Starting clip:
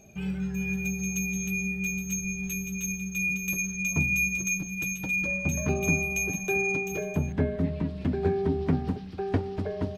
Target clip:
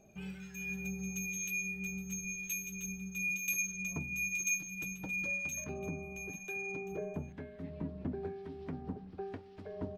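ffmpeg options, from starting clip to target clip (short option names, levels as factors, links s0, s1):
-filter_complex "[0:a]alimiter=limit=0.119:level=0:latency=1:release=423,asetnsamples=n=441:p=0,asendcmd='5.64 highshelf g -8',highshelf=f=2100:g=3,acrossover=split=1500[s0][s1];[s0]aeval=exprs='val(0)*(1-0.7/2+0.7/2*cos(2*PI*1*n/s))':c=same[s2];[s1]aeval=exprs='val(0)*(1-0.7/2-0.7/2*cos(2*PI*1*n/s))':c=same[s3];[s2][s3]amix=inputs=2:normalize=0,equalizer=f=87:w=0.52:g=-5.5,volume=0.562"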